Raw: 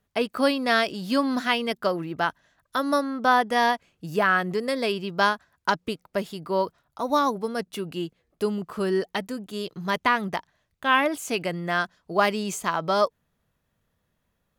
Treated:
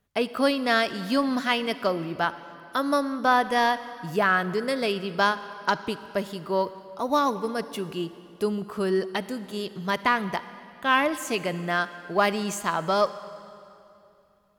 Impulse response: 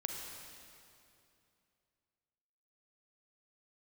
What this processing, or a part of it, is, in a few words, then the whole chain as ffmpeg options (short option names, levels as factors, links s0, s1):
saturated reverb return: -filter_complex "[0:a]asplit=2[s0][s1];[1:a]atrim=start_sample=2205[s2];[s1][s2]afir=irnorm=-1:irlink=0,asoftclip=type=tanh:threshold=0.133,volume=0.376[s3];[s0][s3]amix=inputs=2:normalize=0,volume=0.75"